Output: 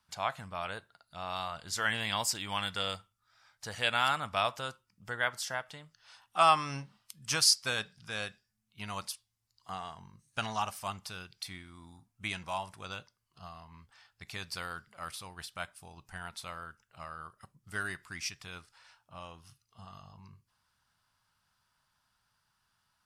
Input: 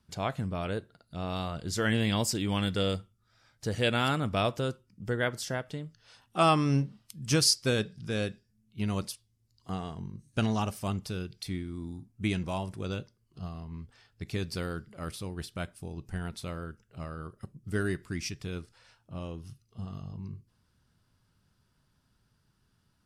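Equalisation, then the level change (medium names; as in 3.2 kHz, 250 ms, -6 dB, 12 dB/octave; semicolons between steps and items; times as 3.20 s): resonant low shelf 580 Hz -13.5 dB, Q 1.5; 0.0 dB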